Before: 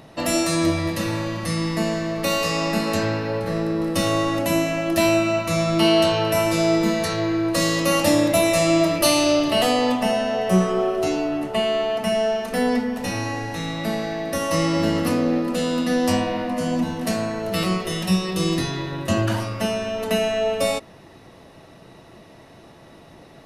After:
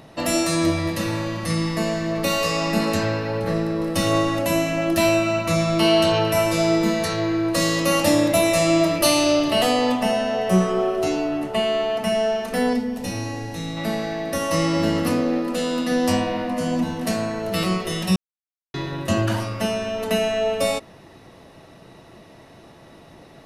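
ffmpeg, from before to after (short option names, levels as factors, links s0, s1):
-filter_complex "[0:a]asettb=1/sr,asplit=3[s0][s1][s2];[s0]atrim=end=1.504[s3];[s1]atrim=start=1.5:end=6.72,asetpts=PTS-STARTPTS,afade=t=in:d=0.004:c=qsin,afade=t=out:st=5.216:d=0.004:c=qsin,aphaser=in_gain=1:out_gain=1:delay=1.9:decay=0.21:speed=1.5:type=sinusoidal[s4];[s2]atrim=start=6.716[s5];[s3][s4]acrossfade=d=0.004:c1=hsin:c2=qsin[s6];[s6][s5]acrossfade=d=0.004:c1=qsin:c2=hsin,asettb=1/sr,asplit=3[s7][s8][s9];[s7]atrim=end=12.734[s10];[s8]atrim=start=12.73:end=13.77,asetpts=PTS-STARTPTS,afade=t=in:d=0.004:c=qsin,afade=t=out:st=1.036:d=0.004:c=qsin,equalizer=f=1400:w=0.59:g=-7.5[s11];[s9]atrim=start=13.766[s12];[s10][s11]acrossfade=d=0.004:c1=hsin:c2=qsin[s13];[s13][s12]acrossfade=d=0.004:c1=qsin:c2=hsin,asettb=1/sr,asplit=3[s14][s15][s16];[s14]atrim=end=15.214[s17];[s15]atrim=start=15.21:end=15.92,asetpts=PTS-STARTPTS,afade=t=in:d=0.004:c=qsin,afade=t=out:st=0.706:d=0.004:c=qsin,equalizer=f=130:w=2.3:g=-13.5[s18];[s16]atrim=start=15.916[s19];[s17][s18]acrossfade=d=0.004:c1=hsin:c2=qsin[s20];[s20][s19]acrossfade=d=0.004:c1=qsin:c2=hsin,asplit=3[s21][s22][s23];[s21]atrim=end=18.16,asetpts=PTS-STARTPTS,afade=t=out:st=18.156:d=0.004:c=hsin[s24];[s22]atrim=start=18.16:end=18.74,asetpts=PTS-STARTPTS,volume=0[s25];[s23]atrim=start=18.74,asetpts=PTS-STARTPTS,afade=t=in:d=0.004:c=hsin[s26];[s24][s25][s26]concat=n=3:v=0:a=1"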